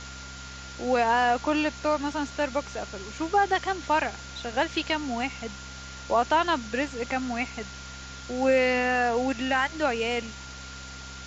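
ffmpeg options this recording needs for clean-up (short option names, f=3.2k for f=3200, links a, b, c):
-af "bandreject=f=65.7:t=h:w=4,bandreject=f=131.4:t=h:w=4,bandreject=f=197.1:t=h:w=4,bandreject=f=262.8:t=h:w=4,bandreject=f=1.4k:w=30,afftdn=nr=30:nf=-41"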